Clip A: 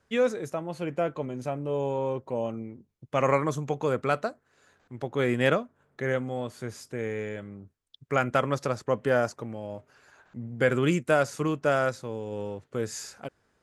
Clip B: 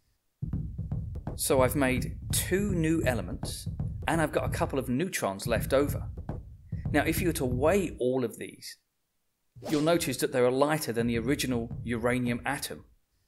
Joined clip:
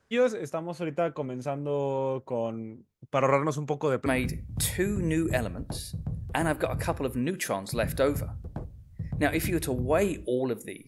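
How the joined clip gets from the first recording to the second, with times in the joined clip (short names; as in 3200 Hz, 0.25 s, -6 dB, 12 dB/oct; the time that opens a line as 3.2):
clip A
4.06 switch to clip B from 1.79 s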